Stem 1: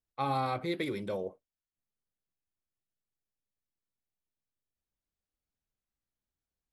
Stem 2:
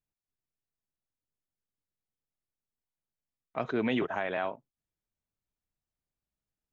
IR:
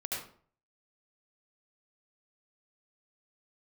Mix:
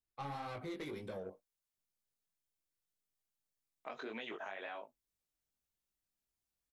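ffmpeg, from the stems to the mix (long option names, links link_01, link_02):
-filter_complex "[0:a]asoftclip=type=tanh:threshold=-31dB,volume=-1dB[link_01];[1:a]highpass=330,highshelf=frequency=3200:gain=11.5,acompressor=threshold=-35dB:ratio=2,adelay=300,volume=-4dB[link_02];[link_01][link_02]amix=inputs=2:normalize=0,flanger=delay=17.5:depth=3.7:speed=1.9,acompressor=threshold=-40dB:ratio=6"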